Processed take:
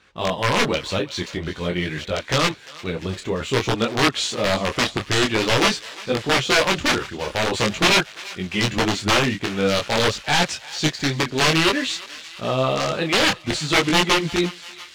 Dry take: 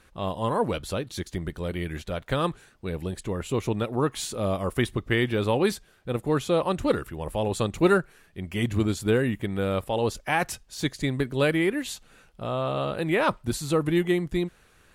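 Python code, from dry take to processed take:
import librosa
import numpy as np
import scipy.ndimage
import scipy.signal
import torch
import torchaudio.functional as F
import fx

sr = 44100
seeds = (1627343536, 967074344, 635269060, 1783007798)

y = fx.highpass(x, sr, hz=140.0, slope=6)
y = (np.mod(10.0 ** (18.0 / 20.0) * y + 1.0, 2.0) - 1.0) / 10.0 ** (18.0 / 20.0)
y = scipy.signal.sosfilt(scipy.signal.butter(4, 7100.0, 'lowpass', fs=sr, output='sos'), y)
y = fx.peak_eq(y, sr, hz=3100.0, db=5.5, octaves=1.6)
y = fx.leveller(y, sr, passes=1)
y = fx.echo_thinned(y, sr, ms=346, feedback_pct=78, hz=1100.0, wet_db=-17.0)
y = fx.detune_double(y, sr, cents=17)
y = y * 10.0 ** (6.5 / 20.0)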